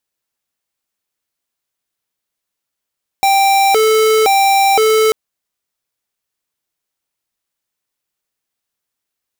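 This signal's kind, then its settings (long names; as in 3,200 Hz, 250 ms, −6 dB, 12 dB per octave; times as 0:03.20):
siren hi-lo 437–785 Hz 0.97 per second square −11 dBFS 1.89 s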